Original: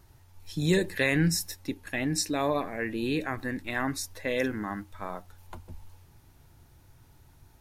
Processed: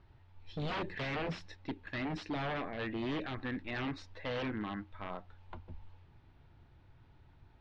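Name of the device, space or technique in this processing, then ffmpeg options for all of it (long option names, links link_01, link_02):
synthesiser wavefolder: -af "aeval=exprs='0.0447*(abs(mod(val(0)/0.0447+3,4)-2)-1)':channel_layout=same,lowpass=frequency=3600:width=0.5412,lowpass=frequency=3600:width=1.3066,volume=-4dB"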